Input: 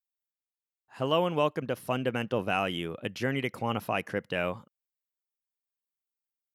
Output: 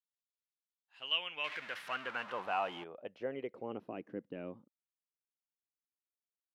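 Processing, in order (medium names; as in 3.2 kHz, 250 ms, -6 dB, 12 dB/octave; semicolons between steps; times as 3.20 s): 1.44–2.84 s: jump at every zero crossing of -29 dBFS; dynamic bell 3.1 kHz, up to +7 dB, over -46 dBFS, Q 0.87; band-pass sweep 3.7 kHz -> 290 Hz, 0.74–4.08 s; trim -3.5 dB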